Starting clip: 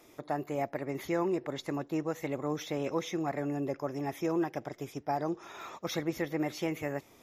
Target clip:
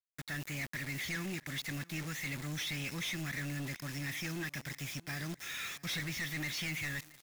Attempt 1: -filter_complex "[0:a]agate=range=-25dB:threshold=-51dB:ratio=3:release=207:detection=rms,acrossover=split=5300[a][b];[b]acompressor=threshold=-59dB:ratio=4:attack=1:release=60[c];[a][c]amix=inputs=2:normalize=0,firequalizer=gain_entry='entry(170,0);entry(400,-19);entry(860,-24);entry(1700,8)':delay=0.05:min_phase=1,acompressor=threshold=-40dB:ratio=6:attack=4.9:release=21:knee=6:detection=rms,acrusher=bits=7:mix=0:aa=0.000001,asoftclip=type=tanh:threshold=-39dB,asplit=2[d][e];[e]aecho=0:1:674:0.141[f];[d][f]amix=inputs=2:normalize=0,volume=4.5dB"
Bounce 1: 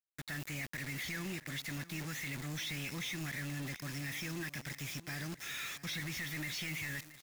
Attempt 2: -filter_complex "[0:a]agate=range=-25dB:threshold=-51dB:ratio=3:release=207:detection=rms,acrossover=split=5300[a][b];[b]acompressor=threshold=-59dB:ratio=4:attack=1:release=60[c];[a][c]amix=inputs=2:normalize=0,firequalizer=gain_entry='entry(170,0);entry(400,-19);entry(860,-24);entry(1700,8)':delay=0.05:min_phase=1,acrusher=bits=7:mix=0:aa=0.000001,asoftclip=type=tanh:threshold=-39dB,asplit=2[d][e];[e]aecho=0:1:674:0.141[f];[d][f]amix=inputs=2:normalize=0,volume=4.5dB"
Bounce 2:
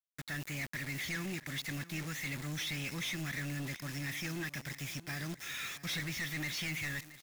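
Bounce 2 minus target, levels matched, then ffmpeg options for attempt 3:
echo-to-direct +6 dB
-filter_complex "[0:a]agate=range=-25dB:threshold=-51dB:ratio=3:release=207:detection=rms,acrossover=split=5300[a][b];[b]acompressor=threshold=-59dB:ratio=4:attack=1:release=60[c];[a][c]amix=inputs=2:normalize=0,firequalizer=gain_entry='entry(170,0);entry(400,-19);entry(860,-24);entry(1700,8)':delay=0.05:min_phase=1,acrusher=bits=7:mix=0:aa=0.000001,asoftclip=type=tanh:threshold=-39dB,asplit=2[d][e];[e]aecho=0:1:674:0.0708[f];[d][f]amix=inputs=2:normalize=0,volume=4.5dB"

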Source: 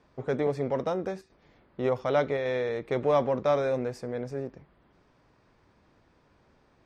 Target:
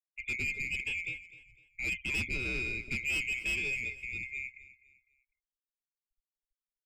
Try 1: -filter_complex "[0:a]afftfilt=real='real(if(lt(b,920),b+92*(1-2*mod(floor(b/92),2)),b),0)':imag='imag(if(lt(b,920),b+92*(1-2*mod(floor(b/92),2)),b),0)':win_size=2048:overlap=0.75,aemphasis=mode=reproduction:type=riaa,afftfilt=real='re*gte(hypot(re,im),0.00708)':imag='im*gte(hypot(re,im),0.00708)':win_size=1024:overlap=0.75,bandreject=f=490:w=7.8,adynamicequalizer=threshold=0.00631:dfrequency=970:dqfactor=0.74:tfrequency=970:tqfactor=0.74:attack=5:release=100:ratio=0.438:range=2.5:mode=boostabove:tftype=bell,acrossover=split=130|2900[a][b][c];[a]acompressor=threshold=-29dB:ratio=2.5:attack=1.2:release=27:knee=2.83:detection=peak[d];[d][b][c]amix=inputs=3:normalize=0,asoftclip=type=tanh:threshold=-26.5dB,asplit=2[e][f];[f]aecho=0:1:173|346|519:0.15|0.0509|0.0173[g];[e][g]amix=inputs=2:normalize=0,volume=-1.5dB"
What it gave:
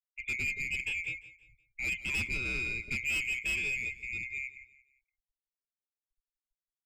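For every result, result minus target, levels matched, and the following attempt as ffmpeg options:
echo 79 ms early; 500 Hz band -4.0 dB
-filter_complex "[0:a]afftfilt=real='real(if(lt(b,920),b+92*(1-2*mod(floor(b/92),2)),b),0)':imag='imag(if(lt(b,920),b+92*(1-2*mod(floor(b/92),2)),b),0)':win_size=2048:overlap=0.75,aemphasis=mode=reproduction:type=riaa,afftfilt=real='re*gte(hypot(re,im),0.00708)':imag='im*gte(hypot(re,im),0.00708)':win_size=1024:overlap=0.75,bandreject=f=490:w=7.8,adynamicequalizer=threshold=0.00631:dfrequency=970:dqfactor=0.74:tfrequency=970:tqfactor=0.74:attack=5:release=100:ratio=0.438:range=2.5:mode=boostabove:tftype=bell,acrossover=split=130|2900[a][b][c];[a]acompressor=threshold=-29dB:ratio=2.5:attack=1.2:release=27:knee=2.83:detection=peak[d];[d][b][c]amix=inputs=3:normalize=0,asoftclip=type=tanh:threshold=-26.5dB,asplit=2[e][f];[f]aecho=0:1:252|504|756:0.15|0.0509|0.0173[g];[e][g]amix=inputs=2:normalize=0,volume=-1.5dB"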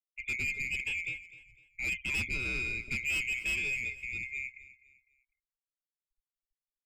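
500 Hz band -4.0 dB
-filter_complex "[0:a]afftfilt=real='real(if(lt(b,920),b+92*(1-2*mod(floor(b/92),2)),b),0)':imag='imag(if(lt(b,920),b+92*(1-2*mod(floor(b/92),2)),b),0)':win_size=2048:overlap=0.75,aemphasis=mode=reproduction:type=riaa,afftfilt=real='re*gte(hypot(re,im),0.00708)':imag='im*gte(hypot(re,im),0.00708)':win_size=1024:overlap=0.75,bandreject=f=490:w=7.8,adynamicequalizer=threshold=0.00631:dfrequency=450:dqfactor=0.74:tfrequency=450:tqfactor=0.74:attack=5:release=100:ratio=0.438:range=2.5:mode=boostabove:tftype=bell,acrossover=split=130|2900[a][b][c];[a]acompressor=threshold=-29dB:ratio=2.5:attack=1.2:release=27:knee=2.83:detection=peak[d];[d][b][c]amix=inputs=3:normalize=0,asoftclip=type=tanh:threshold=-26.5dB,asplit=2[e][f];[f]aecho=0:1:252|504|756:0.15|0.0509|0.0173[g];[e][g]amix=inputs=2:normalize=0,volume=-1.5dB"

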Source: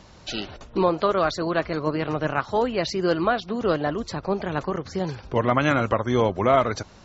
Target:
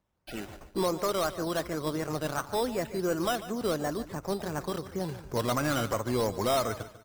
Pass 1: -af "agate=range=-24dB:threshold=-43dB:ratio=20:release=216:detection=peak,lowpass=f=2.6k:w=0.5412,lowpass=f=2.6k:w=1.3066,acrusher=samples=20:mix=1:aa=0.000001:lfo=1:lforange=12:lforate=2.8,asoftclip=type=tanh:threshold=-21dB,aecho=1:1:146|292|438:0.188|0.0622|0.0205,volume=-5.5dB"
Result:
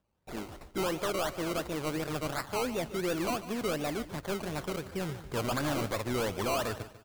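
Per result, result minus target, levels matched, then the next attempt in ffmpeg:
decimation with a swept rate: distortion +10 dB; soft clip: distortion +6 dB
-af "agate=range=-24dB:threshold=-43dB:ratio=20:release=216:detection=peak,lowpass=f=2.6k:w=0.5412,lowpass=f=2.6k:w=1.3066,acrusher=samples=8:mix=1:aa=0.000001:lfo=1:lforange=4.8:lforate=2.8,asoftclip=type=tanh:threshold=-21dB,aecho=1:1:146|292|438:0.188|0.0622|0.0205,volume=-5.5dB"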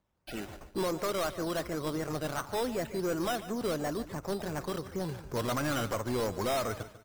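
soft clip: distortion +6 dB
-af "agate=range=-24dB:threshold=-43dB:ratio=20:release=216:detection=peak,lowpass=f=2.6k:w=0.5412,lowpass=f=2.6k:w=1.3066,acrusher=samples=8:mix=1:aa=0.000001:lfo=1:lforange=4.8:lforate=2.8,asoftclip=type=tanh:threshold=-14dB,aecho=1:1:146|292|438:0.188|0.0622|0.0205,volume=-5.5dB"

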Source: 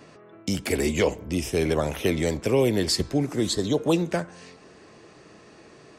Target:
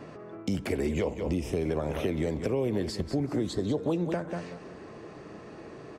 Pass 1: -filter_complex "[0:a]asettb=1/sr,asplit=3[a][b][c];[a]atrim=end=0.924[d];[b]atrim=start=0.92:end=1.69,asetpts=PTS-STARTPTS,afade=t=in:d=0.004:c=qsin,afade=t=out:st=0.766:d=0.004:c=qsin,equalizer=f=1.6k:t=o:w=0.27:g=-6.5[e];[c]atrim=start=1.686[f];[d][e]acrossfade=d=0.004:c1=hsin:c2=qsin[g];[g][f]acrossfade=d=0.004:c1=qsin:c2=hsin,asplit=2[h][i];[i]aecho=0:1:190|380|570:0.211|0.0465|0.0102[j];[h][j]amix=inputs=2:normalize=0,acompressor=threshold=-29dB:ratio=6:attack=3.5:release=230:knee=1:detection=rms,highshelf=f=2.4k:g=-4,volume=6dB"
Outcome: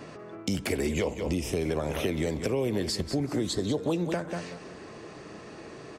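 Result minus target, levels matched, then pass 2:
4000 Hz band +6.0 dB
-filter_complex "[0:a]asettb=1/sr,asplit=3[a][b][c];[a]atrim=end=0.924[d];[b]atrim=start=0.92:end=1.69,asetpts=PTS-STARTPTS,afade=t=in:d=0.004:c=qsin,afade=t=out:st=0.766:d=0.004:c=qsin,equalizer=f=1.6k:t=o:w=0.27:g=-6.5[e];[c]atrim=start=1.686[f];[d][e]acrossfade=d=0.004:c1=hsin:c2=qsin[g];[g][f]acrossfade=d=0.004:c1=qsin:c2=hsin,asplit=2[h][i];[i]aecho=0:1:190|380|570:0.211|0.0465|0.0102[j];[h][j]amix=inputs=2:normalize=0,acompressor=threshold=-29dB:ratio=6:attack=3.5:release=230:knee=1:detection=rms,highshelf=f=2.4k:g=-13.5,volume=6dB"

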